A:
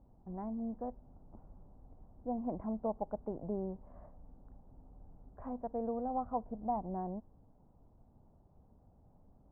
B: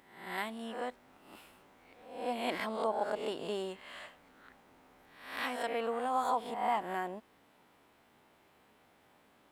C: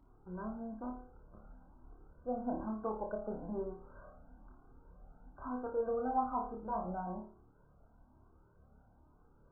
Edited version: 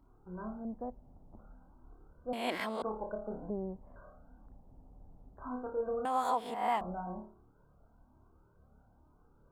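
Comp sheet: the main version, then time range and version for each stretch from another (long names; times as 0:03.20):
C
0:00.65–0:01.39: punch in from A
0:02.33–0:02.82: punch in from B
0:03.50–0:03.96: punch in from A
0:04.46–0:05.39: punch in from A
0:06.05–0:06.81: punch in from B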